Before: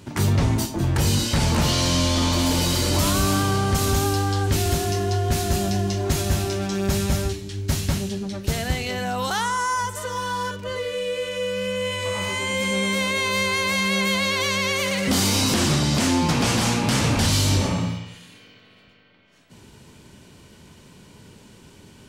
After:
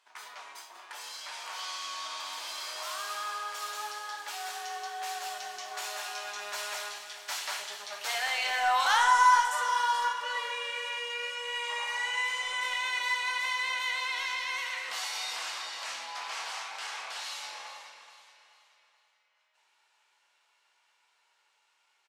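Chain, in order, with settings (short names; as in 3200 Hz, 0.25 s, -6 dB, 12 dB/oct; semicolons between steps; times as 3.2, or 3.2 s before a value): Doppler pass-by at 8.94, 19 m/s, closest 27 m; HPF 830 Hz 24 dB/oct; high shelf 6600 Hz -11.5 dB; in parallel at -11 dB: overloaded stage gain 33 dB; on the sum: feedback echo 0.429 s, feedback 40%, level -12.5 dB; on a send at -2.5 dB: reverb RT60 0.95 s, pre-delay 7 ms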